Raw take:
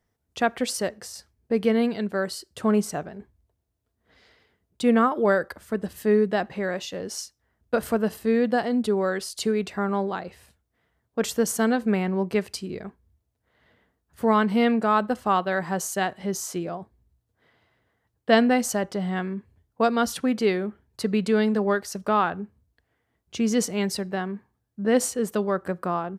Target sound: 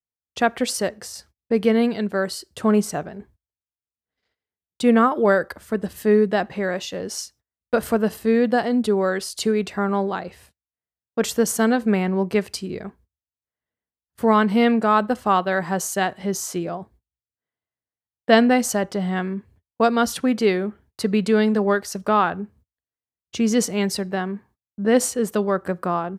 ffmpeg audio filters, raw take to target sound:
ffmpeg -i in.wav -af "agate=range=-32dB:threshold=-54dB:ratio=16:detection=peak,volume=3.5dB" out.wav

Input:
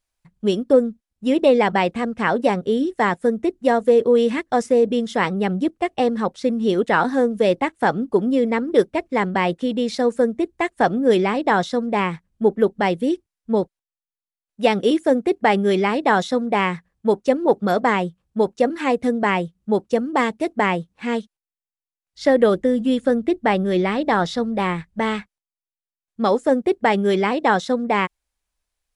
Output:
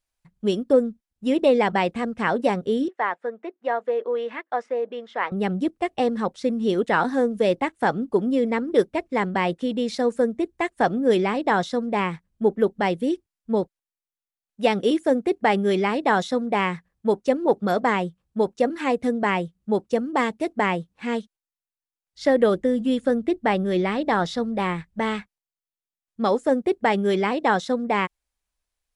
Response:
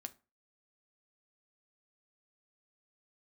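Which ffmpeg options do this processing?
-filter_complex "[0:a]asettb=1/sr,asplit=3[link_01][link_02][link_03];[link_01]atrim=end=2.884[link_04];[link_02]atrim=start=2.88:end=5.32,asetpts=PTS-STARTPTS,afade=type=in:duration=0.004:curve=qsin,afade=type=out:start_time=2.436:duration=0.004:curve=qsin,highpass=650,lowpass=2100[link_05];[link_03]atrim=start=5.316[link_06];[link_04][link_05]acrossfade=duration=0.004:curve1=hsin:curve2=qsin[link_07];[link_07][link_06]acrossfade=duration=0.004:curve1=qsin:curve2=hsin,volume=-3dB"

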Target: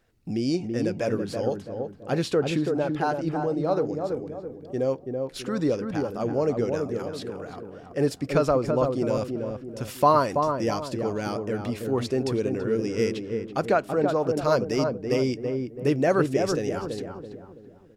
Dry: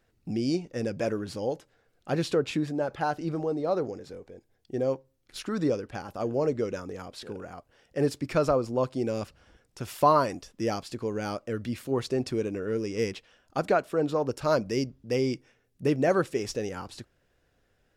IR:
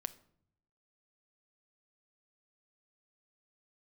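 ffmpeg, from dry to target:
-filter_complex "[0:a]asettb=1/sr,asplit=3[link_01][link_02][link_03];[link_01]atrim=end=6.814[link_04];[link_02]atrim=start=6.81:end=7.5,asetpts=PTS-STARTPTS,afade=type=in:duration=0.004:curve=qsin,afade=type=out:start_time=0.686:duration=0.004:curve=qsin,highpass=110[link_05];[link_03]atrim=start=7.496[link_06];[link_04][link_05]acrossfade=duration=0.004:curve1=hsin:curve2=qsin[link_07];[link_07][link_06]acrossfade=duration=0.004:curve1=qsin:curve2=hsin,asplit=2[link_08][link_09];[link_09]adelay=331,lowpass=frequency=980:poles=1,volume=-3.5dB,asplit=2[link_10][link_11];[link_11]adelay=331,lowpass=frequency=980:poles=1,volume=0.45,asplit=2[link_12][link_13];[link_13]adelay=331,lowpass=frequency=980:poles=1,volume=0.45,asplit=2[link_14][link_15];[link_15]adelay=331,lowpass=frequency=980:poles=1,volume=0.45,asplit=2[link_16][link_17];[link_17]adelay=331,lowpass=frequency=980:poles=1,volume=0.45,asplit=2[link_18][link_19];[link_19]adelay=331,lowpass=frequency=980:poles=1,volume=0.45[link_20];[link_10][link_12][link_14][link_16][link_18][link_20]amix=inputs=6:normalize=0[link_21];[link_08][link_21]amix=inputs=2:normalize=0,volume=2dB"

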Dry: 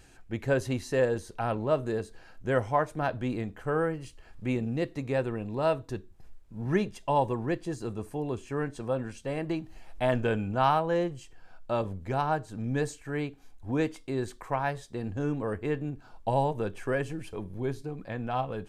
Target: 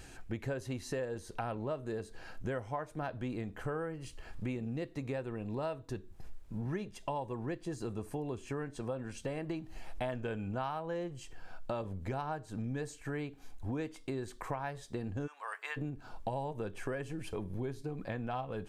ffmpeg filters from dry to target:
ffmpeg -i in.wav -filter_complex "[0:a]asplit=3[link_01][link_02][link_03];[link_01]afade=type=out:start_time=15.26:duration=0.02[link_04];[link_02]highpass=frequency=930:width=0.5412,highpass=frequency=930:width=1.3066,afade=type=in:start_time=15.26:duration=0.02,afade=type=out:start_time=15.76:duration=0.02[link_05];[link_03]afade=type=in:start_time=15.76:duration=0.02[link_06];[link_04][link_05][link_06]amix=inputs=3:normalize=0,acompressor=threshold=-40dB:ratio=6,volume=4.5dB" out.wav

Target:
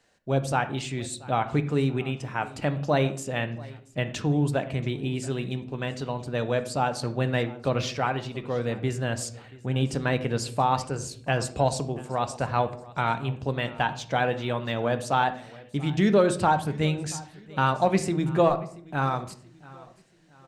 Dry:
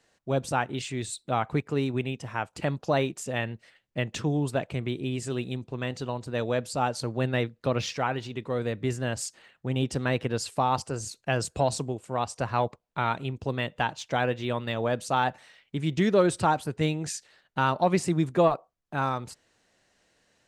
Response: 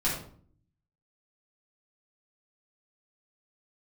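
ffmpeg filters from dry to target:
-filter_complex "[0:a]aecho=1:1:681|1362|2043:0.0841|0.0337|0.0135,asplit=2[link_01][link_02];[1:a]atrim=start_sample=2205,lowpass=5300[link_03];[link_02][link_03]afir=irnorm=-1:irlink=0,volume=-16.5dB[link_04];[link_01][link_04]amix=inputs=2:normalize=0"

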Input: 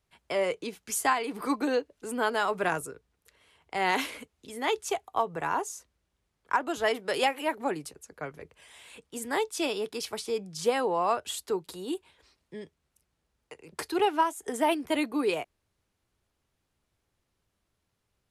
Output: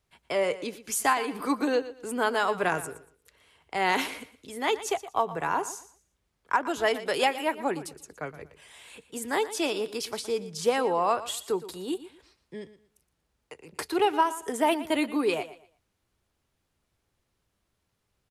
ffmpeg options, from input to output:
ffmpeg -i in.wav -af "aecho=1:1:118|236|354:0.178|0.0445|0.0111,volume=1.5dB" out.wav

